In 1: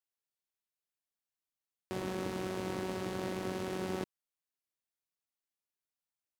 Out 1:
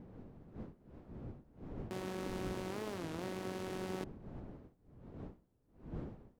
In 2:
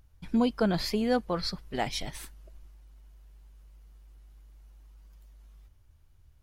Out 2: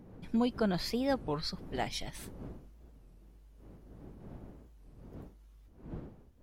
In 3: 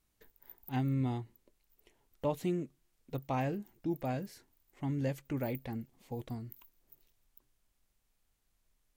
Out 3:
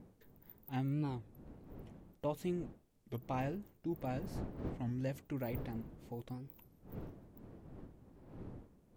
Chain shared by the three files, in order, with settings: wind noise 270 Hz -46 dBFS; warped record 33 1/3 rpm, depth 250 cents; trim -4.5 dB

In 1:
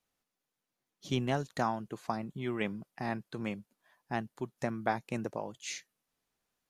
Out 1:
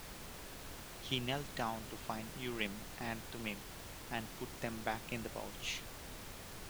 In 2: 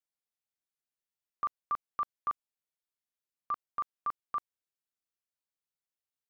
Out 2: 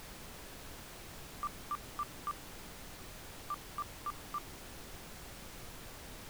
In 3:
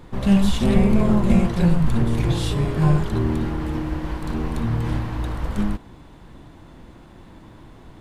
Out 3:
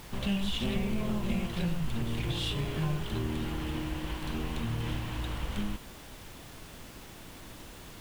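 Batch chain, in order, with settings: peaking EQ 3 kHz +13 dB 0.91 oct; compression 2.5:1, threshold -22 dBFS; added noise pink -41 dBFS; trim -8 dB

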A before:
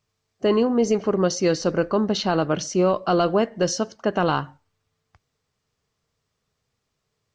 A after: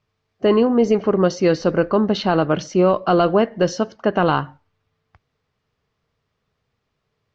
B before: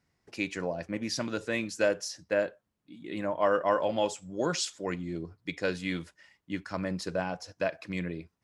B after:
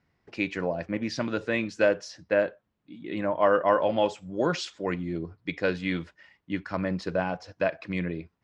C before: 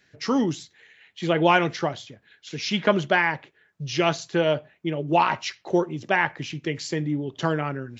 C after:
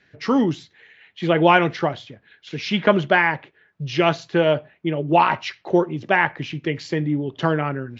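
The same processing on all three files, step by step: low-pass 3.5 kHz 12 dB/octave; trim +4 dB

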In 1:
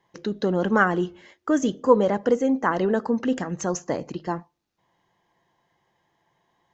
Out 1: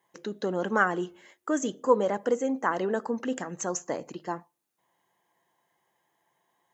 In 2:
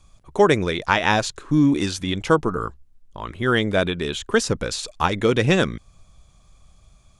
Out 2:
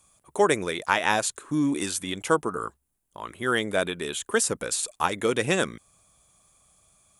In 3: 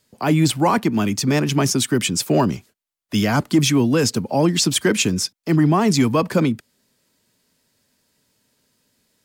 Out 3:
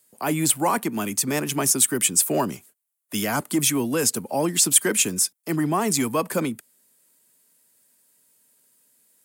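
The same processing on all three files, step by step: high-pass 360 Hz 6 dB/octave; resonant high shelf 7 kHz +11 dB, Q 1.5; trim -3 dB

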